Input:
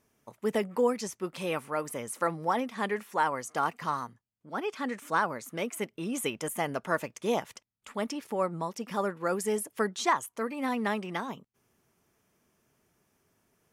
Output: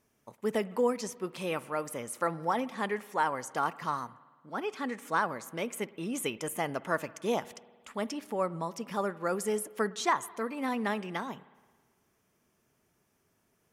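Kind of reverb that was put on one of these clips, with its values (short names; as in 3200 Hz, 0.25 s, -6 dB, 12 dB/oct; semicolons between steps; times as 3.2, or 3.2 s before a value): spring tank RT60 1.5 s, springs 54 ms, chirp 30 ms, DRR 18.5 dB; gain -1.5 dB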